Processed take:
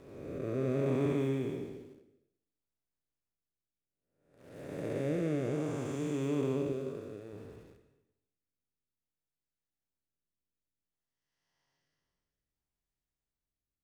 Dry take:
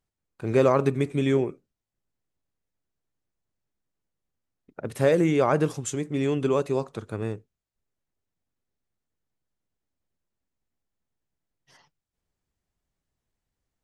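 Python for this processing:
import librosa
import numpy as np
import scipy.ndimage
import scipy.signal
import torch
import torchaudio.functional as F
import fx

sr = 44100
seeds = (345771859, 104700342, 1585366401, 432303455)

p1 = fx.spec_blur(x, sr, span_ms=653.0)
p2 = fx.low_shelf(p1, sr, hz=170.0, db=-10.5, at=(6.72, 7.33))
p3 = fx.quant_dither(p2, sr, seeds[0], bits=8, dither='none')
p4 = p2 + (p3 * 10.0 ** (-8.5 / 20.0))
p5 = fx.rev_gated(p4, sr, seeds[1], gate_ms=340, shape='falling', drr_db=8.0)
p6 = fx.rotary(p5, sr, hz=0.6)
y = p6 * 10.0 ** (-7.0 / 20.0)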